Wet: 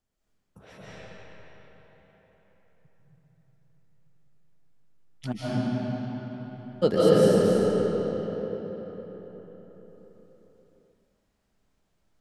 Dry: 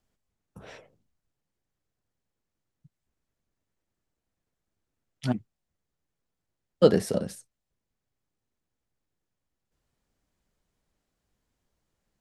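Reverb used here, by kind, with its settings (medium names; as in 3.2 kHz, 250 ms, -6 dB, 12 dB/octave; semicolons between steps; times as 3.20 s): algorithmic reverb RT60 4.8 s, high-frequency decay 0.65×, pre-delay 110 ms, DRR -10 dB; trim -5 dB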